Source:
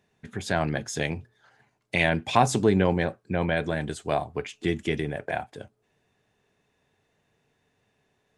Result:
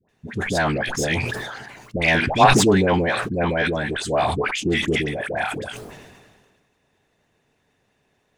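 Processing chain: tracing distortion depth 0.022 ms; 1.95–4.44 high shelf 9800 Hz -10 dB; dispersion highs, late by 91 ms, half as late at 900 Hz; harmonic-percussive split percussive +7 dB; sustainer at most 35 dB/s

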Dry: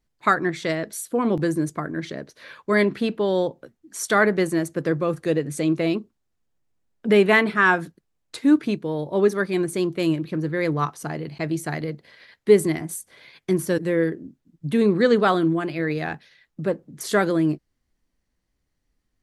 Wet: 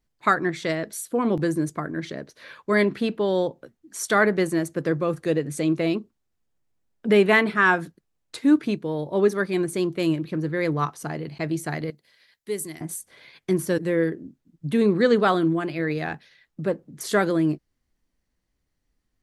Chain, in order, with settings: 11.9–12.81 pre-emphasis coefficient 0.8; gain -1 dB

